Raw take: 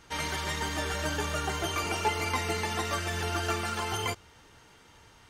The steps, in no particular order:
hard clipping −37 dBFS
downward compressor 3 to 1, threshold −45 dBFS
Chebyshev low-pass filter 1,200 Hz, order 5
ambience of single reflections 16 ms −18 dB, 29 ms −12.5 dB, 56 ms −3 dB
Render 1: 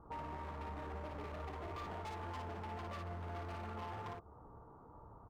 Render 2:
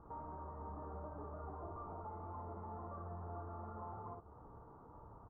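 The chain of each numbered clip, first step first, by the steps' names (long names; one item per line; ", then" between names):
Chebyshev low-pass filter, then hard clipping, then ambience of single reflections, then downward compressor
hard clipping, then ambience of single reflections, then downward compressor, then Chebyshev low-pass filter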